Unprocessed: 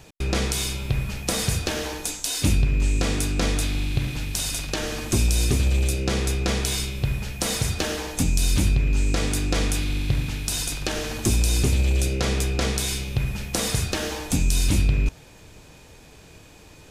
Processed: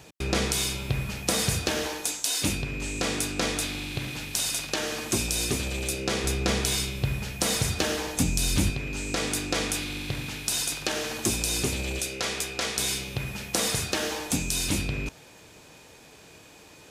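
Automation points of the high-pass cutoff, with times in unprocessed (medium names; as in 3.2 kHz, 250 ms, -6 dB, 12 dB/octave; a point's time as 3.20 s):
high-pass 6 dB/octave
120 Hz
from 1.87 s 320 Hz
from 6.24 s 100 Hz
from 8.70 s 330 Hz
from 11.99 s 890 Hz
from 12.78 s 260 Hz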